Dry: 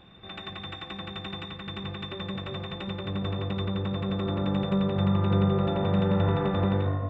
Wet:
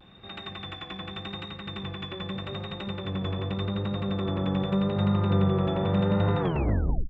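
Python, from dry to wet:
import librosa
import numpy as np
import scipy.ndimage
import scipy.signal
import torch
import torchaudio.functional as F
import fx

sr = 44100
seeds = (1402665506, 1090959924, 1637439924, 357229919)

y = fx.tape_stop_end(x, sr, length_s=0.69)
y = fx.vibrato(y, sr, rate_hz=0.84, depth_cents=47.0)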